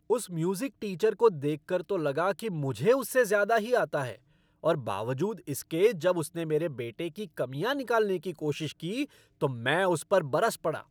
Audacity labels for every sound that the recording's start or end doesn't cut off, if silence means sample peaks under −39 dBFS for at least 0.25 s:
4.630000	9.050000	sound